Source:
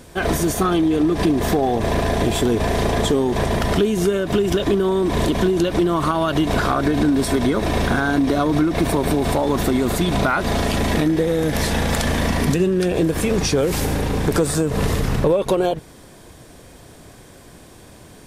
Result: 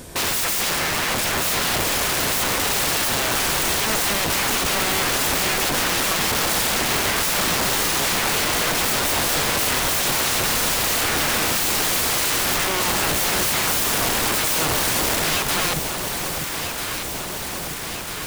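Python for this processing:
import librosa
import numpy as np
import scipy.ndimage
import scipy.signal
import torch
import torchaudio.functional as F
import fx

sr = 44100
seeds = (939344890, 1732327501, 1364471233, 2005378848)

p1 = fx.high_shelf(x, sr, hz=6400.0, db=7.0)
p2 = (np.mod(10.0 ** (21.0 / 20.0) * p1 + 1.0, 2.0) - 1.0) / 10.0 ** (21.0 / 20.0)
p3 = p2 + fx.echo_alternate(p2, sr, ms=647, hz=970.0, feedback_pct=84, wet_db=-6.0, dry=0)
y = p3 * librosa.db_to_amplitude(3.5)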